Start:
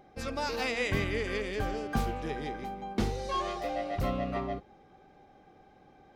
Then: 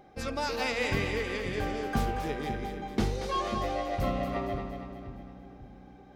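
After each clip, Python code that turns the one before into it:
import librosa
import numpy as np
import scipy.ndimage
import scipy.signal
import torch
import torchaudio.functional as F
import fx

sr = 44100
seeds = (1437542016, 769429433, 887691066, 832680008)

y = fx.rider(x, sr, range_db=10, speed_s=2.0)
y = fx.echo_split(y, sr, split_hz=370.0, low_ms=540, high_ms=232, feedback_pct=52, wet_db=-7)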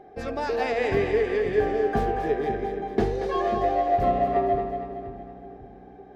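y = fx.high_shelf(x, sr, hz=4400.0, db=-11.5)
y = fx.small_body(y, sr, hz=(420.0, 690.0, 1700.0), ring_ms=40, db=15)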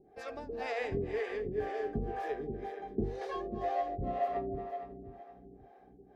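y = fx.harmonic_tremolo(x, sr, hz=2.0, depth_pct=100, crossover_hz=430.0)
y = F.gain(torch.from_numpy(y), -6.5).numpy()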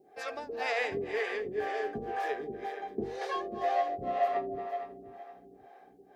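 y = fx.highpass(x, sr, hz=900.0, slope=6)
y = F.gain(torch.from_numpy(y), 8.5).numpy()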